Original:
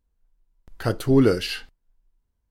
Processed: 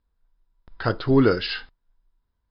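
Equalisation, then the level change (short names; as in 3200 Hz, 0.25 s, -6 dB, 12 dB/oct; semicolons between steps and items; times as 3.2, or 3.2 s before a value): rippled Chebyshev low-pass 5200 Hz, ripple 6 dB; bell 990 Hz +4 dB 0.2 oct; +5.0 dB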